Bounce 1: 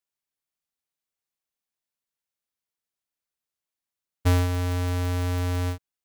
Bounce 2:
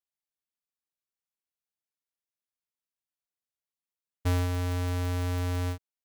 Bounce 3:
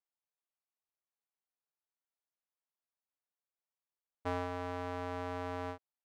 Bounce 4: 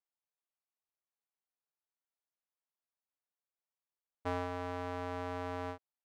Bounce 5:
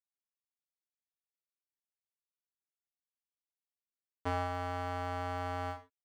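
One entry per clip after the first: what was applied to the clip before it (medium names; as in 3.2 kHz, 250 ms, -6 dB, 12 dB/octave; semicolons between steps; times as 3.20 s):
waveshaping leveller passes 1; trim -6.5 dB
band-pass filter 820 Hz, Q 0.97; trim +1 dB
no audible change
crossover distortion -50 dBFS; gated-style reverb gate 140 ms falling, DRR 6.5 dB; trim +2.5 dB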